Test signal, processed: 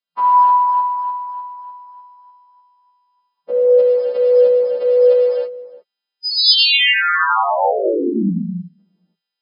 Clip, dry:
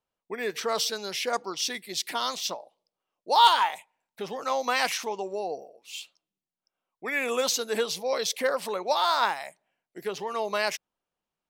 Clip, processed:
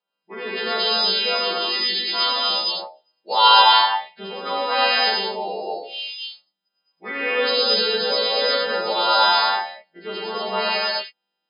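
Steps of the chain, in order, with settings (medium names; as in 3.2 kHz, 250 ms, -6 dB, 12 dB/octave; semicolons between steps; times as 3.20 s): partials quantised in pitch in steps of 2 st; gated-style reverb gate 350 ms flat, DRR -6 dB; FFT band-pass 170–5200 Hz; trim -1 dB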